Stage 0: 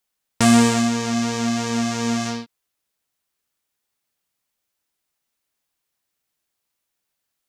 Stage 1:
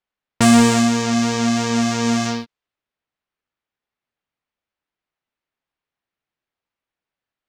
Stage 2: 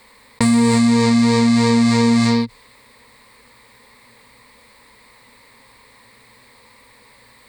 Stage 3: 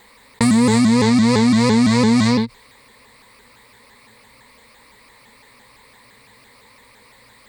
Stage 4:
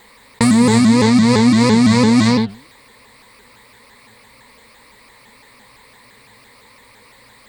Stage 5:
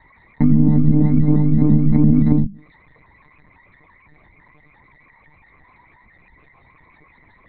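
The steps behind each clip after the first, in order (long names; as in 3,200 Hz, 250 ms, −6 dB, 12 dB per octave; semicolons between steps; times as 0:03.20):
low-pass that shuts in the quiet parts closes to 2,700 Hz, open at −16.5 dBFS; leveller curve on the samples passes 1
EQ curve with evenly spaced ripples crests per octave 0.96, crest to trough 13 dB; brickwall limiter −8.5 dBFS, peak gain reduction 9.5 dB; envelope flattener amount 50%
pitch modulation by a square or saw wave saw up 5.9 Hz, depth 160 cents
flanger 1.8 Hz, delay 2.8 ms, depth 7.7 ms, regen +88%; level +7 dB
spectral envelope exaggerated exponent 3; on a send at −13 dB: convolution reverb, pre-delay 3 ms; on the sum: one-pitch LPC vocoder at 8 kHz 150 Hz; level −5 dB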